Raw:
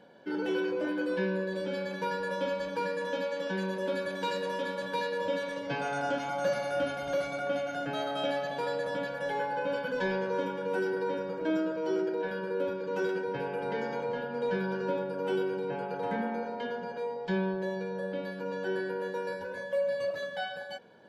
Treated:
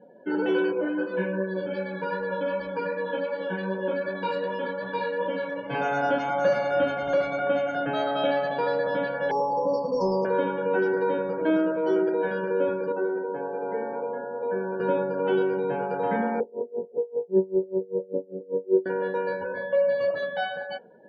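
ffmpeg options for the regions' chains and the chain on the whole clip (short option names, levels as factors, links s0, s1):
-filter_complex "[0:a]asettb=1/sr,asplit=3[s0][s1][s2];[s0]atrim=end=0.724[s3];[s1]atrim=start=0.72:end=5.75,asetpts=PTS-STARTPTS,afade=t=in:d=0.004:c=qsin,afade=t=out:st=5.026:d=0.004:c=qsin,flanger=delay=15:depth=2.5:speed=2.6,bandreject=f=3700:w=24[s4];[s2]atrim=start=5.746[s5];[s3][s4]acrossfade=d=0.004:c1=hsin:c2=qsin[s6];[s6][s5]acrossfade=d=0.004:c1=qsin:c2=hsin,asettb=1/sr,asplit=3[s7][s8][s9];[s7]atrim=end=9.314[s10];[s8]atrim=start=9.31:end=10.25,asetpts=PTS-STARTPTS,afade=t=in:d=0.004:c=qsin,afade=t=out:st=0.936:d=0.004:c=qsin,asuperstop=centerf=2400:order=20:qfactor=0.7,equalizer=f=5700:t=o:w=0.88:g=12.5[s11];[s9]atrim=start=10.246[s12];[s10][s11]acrossfade=d=0.004:c1=hsin:c2=qsin[s13];[s13][s12]acrossfade=d=0.004:c1=qsin:c2=hsin,asettb=1/sr,asplit=3[s14][s15][s16];[s14]atrim=end=12.924[s17];[s15]atrim=start=12.92:end=14.8,asetpts=PTS-STARTPTS,afade=t=in:d=0.004:c=qsin,afade=t=out:st=1.876:d=0.004:c=qsin,highpass=290,equalizer=f=3600:t=o:w=2.8:g=-13.5,bandreject=f=60:t=h:w=6,bandreject=f=120:t=h:w=6,bandreject=f=180:t=h:w=6,bandreject=f=240:t=h:w=6,bandreject=f=300:t=h:w=6,bandreject=f=360:t=h:w=6,bandreject=f=420:t=h:w=6,bandreject=f=480:t=h:w=6,bandreject=f=540:t=h:w=6,bandreject=f=600:t=h:w=6[s18];[s16]atrim=start=14.796[s19];[s17][s18]acrossfade=d=0.004:c1=hsin:c2=qsin[s20];[s20][s19]acrossfade=d=0.004:c1=qsin:c2=hsin,asettb=1/sr,asplit=3[s21][s22][s23];[s21]atrim=end=16.404[s24];[s22]atrim=start=16.4:end=18.86,asetpts=PTS-STARTPTS,afade=t=in:d=0.004:c=qsin,afade=t=out:st=2.456:d=0.004:c=qsin,lowpass=f=400:t=q:w=2.5,aecho=1:1:2.2:0.45,atrim=end_sample=108486,aeval=exprs='val(0)*pow(10,-27*(0.5-0.5*cos(2*PI*5.1*n/s))/20)':c=same[s25];[s23]atrim=start=18.856[s26];[s24][s25]acrossfade=d=0.004:c1=hsin:c2=qsin[s27];[s27][s26]acrossfade=d=0.004:c1=qsin:c2=hsin,lowpass=f=2200:p=1,afftdn=nr=24:nf=-53,lowshelf=f=170:g=-6,volume=2.51"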